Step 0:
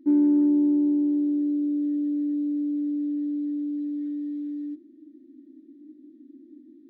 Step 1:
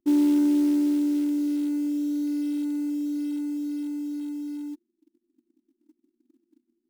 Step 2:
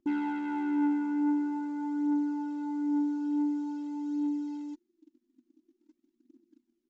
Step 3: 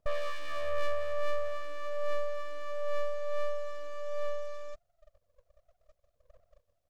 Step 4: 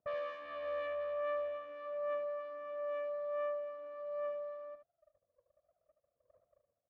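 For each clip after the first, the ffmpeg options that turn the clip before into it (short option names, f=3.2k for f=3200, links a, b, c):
-af "anlmdn=25.1,tiltshelf=f=740:g=-6,acrusher=bits=6:mode=log:mix=0:aa=0.000001,volume=3.5dB"
-af "aresample=16000,asoftclip=type=tanh:threshold=-29.5dB,aresample=44100,aphaser=in_gain=1:out_gain=1:delay=4.3:decay=0.46:speed=0.47:type=triangular"
-af "aeval=exprs='abs(val(0))':c=same,volume=2dB"
-af "adynamicsmooth=sensitivity=6:basefreq=1.4k,highpass=160,lowpass=2.8k,aecho=1:1:75:0.376,volume=-4dB"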